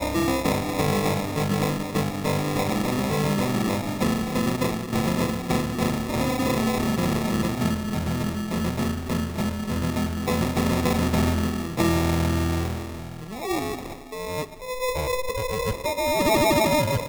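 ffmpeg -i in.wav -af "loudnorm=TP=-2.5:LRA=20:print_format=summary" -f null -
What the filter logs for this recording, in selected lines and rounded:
Input Integrated:    -24.6 LUFS
Input True Peak:     -10.1 dBTP
Input LRA:             2.2 LU
Input Threshold:     -34.7 LUFS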